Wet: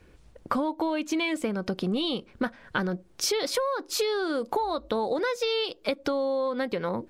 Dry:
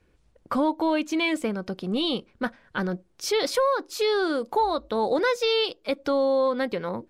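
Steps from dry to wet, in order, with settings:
downward compressor 10 to 1, threshold −33 dBFS, peak gain reduction 15 dB
level +8.5 dB

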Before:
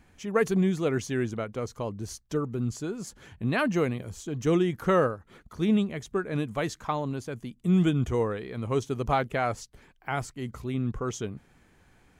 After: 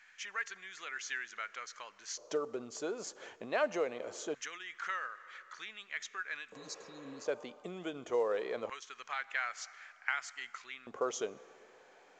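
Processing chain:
on a send at −20.5 dB: convolution reverb RT60 2.3 s, pre-delay 20 ms
on the sum: downward compressor 8 to 1, threshold −30 dBFS, peak gain reduction 12.5 dB
auto-filter high-pass square 0.23 Hz 550–1,700 Hz
healed spectral selection 0:06.58–0:07.23, 320–3,700 Hz before
mu-law 128 kbit/s 16,000 Hz

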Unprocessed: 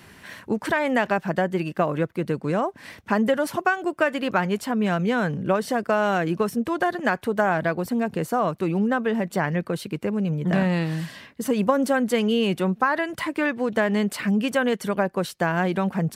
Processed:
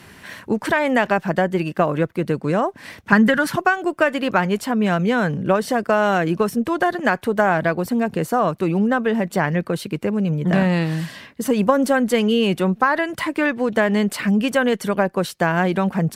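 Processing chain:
harmonic generator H 4 −34 dB, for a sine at −6 dBFS
0:03.12–0:03.56: graphic EQ with 15 bands 160 Hz +12 dB, 630 Hz −6 dB, 1,600 Hz +10 dB, 4,000 Hz +4 dB
level +4 dB

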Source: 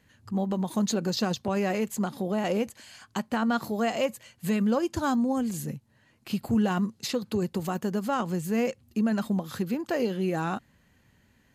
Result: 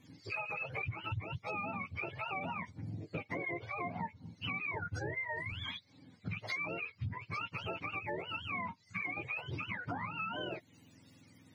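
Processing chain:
frequency axis turned over on the octave scale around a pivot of 700 Hz
0:04.74–0:05.53: low-shelf EQ 180 Hz +10 dB
downward compressor 6 to 1, threshold −41 dBFS, peak gain reduction 21 dB
level +3.5 dB

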